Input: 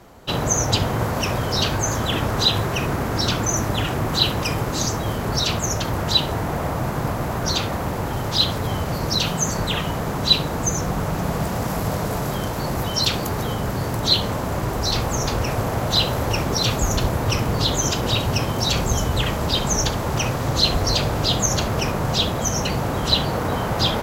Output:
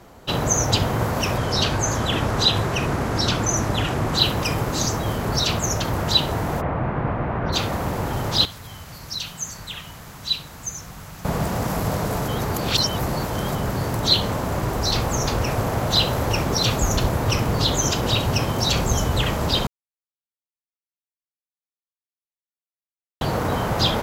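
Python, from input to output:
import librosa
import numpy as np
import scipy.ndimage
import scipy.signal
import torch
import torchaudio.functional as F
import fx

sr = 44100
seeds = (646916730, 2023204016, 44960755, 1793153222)

y = fx.lowpass(x, sr, hz=11000.0, slope=12, at=(1.37, 4.18))
y = fx.lowpass(y, sr, hz=2500.0, slope=24, at=(6.6, 7.52), fade=0.02)
y = fx.tone_stack(y, sr, knobs='5-5-5', at=(8.45, 11.25))
y = fx.edit(y, sr, fx.reverse_span(start_s=12.28, length_s=1.27),
    fx.silence(start_s=19.67, length_s=3.54), tone=tone)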